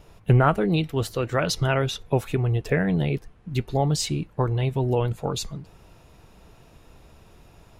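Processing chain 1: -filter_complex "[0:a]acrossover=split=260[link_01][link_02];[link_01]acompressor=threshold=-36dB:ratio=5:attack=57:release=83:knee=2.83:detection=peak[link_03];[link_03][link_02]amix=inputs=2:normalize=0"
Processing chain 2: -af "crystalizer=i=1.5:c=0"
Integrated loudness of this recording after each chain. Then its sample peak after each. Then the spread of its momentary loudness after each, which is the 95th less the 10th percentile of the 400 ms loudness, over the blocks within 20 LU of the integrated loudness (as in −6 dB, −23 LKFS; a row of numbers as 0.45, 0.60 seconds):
−27.0, −24.0 LKFS; −7.0, −5.0 dBFS; 9, 8 LU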